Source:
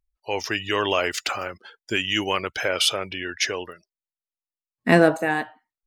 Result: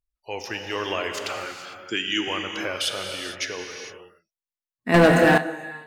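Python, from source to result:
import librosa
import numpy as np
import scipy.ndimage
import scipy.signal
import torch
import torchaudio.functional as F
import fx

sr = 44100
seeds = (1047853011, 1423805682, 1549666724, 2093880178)

y = fx.cabinet(x, sr, low_hz=130.0, low_slope=24, high_hz=8100.0, hz=(320.0, 640.0, 1300.0, 1900.0, 3400.0, 6500.0), db=(7, -10, 5, 4, 8, 7), at=(1.43, 2.28))
y = fx.rev_gated(y, sr, seeds[0], gate_ms=480, shape='flat', drr_db=3.5)
y = fx.leveller(y, sr, passes=3, at=(4.94, 5.38))
y = y * 10.0 ** (-6.0 / 20.0)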